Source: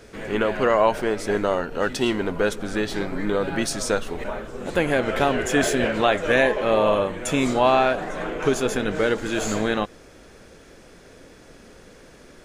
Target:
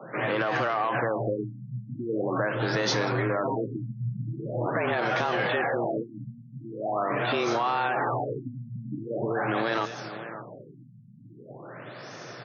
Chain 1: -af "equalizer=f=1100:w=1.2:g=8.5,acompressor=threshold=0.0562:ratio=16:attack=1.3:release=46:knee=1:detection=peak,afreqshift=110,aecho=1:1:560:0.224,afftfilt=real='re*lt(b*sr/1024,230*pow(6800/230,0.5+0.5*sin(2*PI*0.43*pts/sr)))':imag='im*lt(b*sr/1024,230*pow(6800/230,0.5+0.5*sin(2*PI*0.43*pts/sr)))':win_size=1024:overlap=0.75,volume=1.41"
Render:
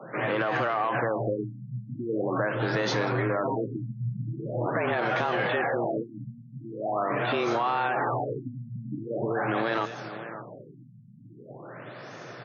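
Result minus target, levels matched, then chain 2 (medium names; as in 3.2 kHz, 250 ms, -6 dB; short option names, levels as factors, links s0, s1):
8 kHz band -6.0 dB
-af "equalizer=f=1100:w=1.2:g=8.5,acompressor=threshold=0.0562:ratio=16:attack=1.3:release=46:knee=1:detection=peak,highshelf=f=7900:t=q:w=3:g=-13.5,afreqshift=110,aecho=1:1:560:0.224,afftfilt=real='re*lt(b*sr/1024,230*pow(6800/230,0.5+0.5*sin(2*PI*0.43*pts/sr)))':imag='im*lt(b*sr/1024,230*pow(6800/230,0.5+0.5*sin(2*PI*0.43*pts/sr)))':win_size=1024:overlap=0.75,volume=1.41"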